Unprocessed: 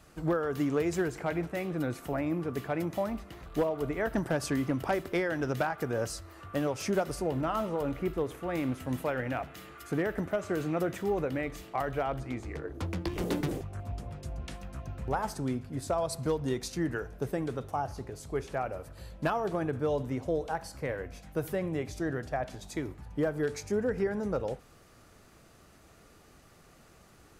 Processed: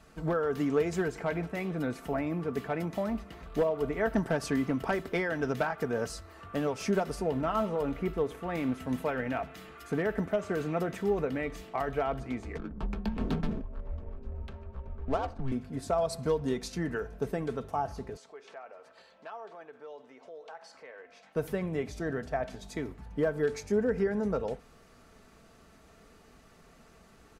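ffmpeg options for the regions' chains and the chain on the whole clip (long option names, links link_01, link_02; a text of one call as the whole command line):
ffmpeg -i in.wav -filter_complex "[0:a]asettb=1/sr,asplit=3[link_01][link_02][link_03];[link_01]atrim=end=12.584[link_04];[link_02]atrim=start=12.58:end=15.52,asetpts=PTS-STARTPTS,afade=type=in:duration=0.004:curve=qsin,afade=type=out:start_time=2.936:duration=0.004:curve=qsin,bandreject=frequency=2100:width=6.7,adynamicsmooth=sensitivity=8:basefreq=840,afreqshift=-130[link_05];[link_03]atrim=start=15.516[link_06];[link_04][link_05]acrossfade=duration=0.004:curve1=hsin:curve2=qsin[link_07];[link_07][link_06]acrossfade=duration=0.004:curve1=qsin:curve2=hsin,asettb=1/sr,asplit=3[link_08][link_09][link_10];[link_08]atrim=end=18.174[link_11];[link_09]atrim=start=18.17:end=21.36,asetpts=PTS-STARTPTS,afade=type=in:duration=0.004:curve=qsin,afade=type=out:start_time=3.186:duration=0.004:curve=qsin,acompressor=threshold=-43dB:ratio=3:attack=3.2:release=140:knee=1:detection=peak,highpass=560,lowpass=5600[link_12];[link_10]atrim=start=21.356[link_13];[link_11][link_12]acrossfade=duration=0.004:curve1=hsin:curve2=qsin[link_14];[link_14][link_13]acrossfade=duration=0.004:curve1=qsin:curve2=hsin,highshelf=frequency=7500:gain=-8,aecho=1:1:4.5:0.43" out.wav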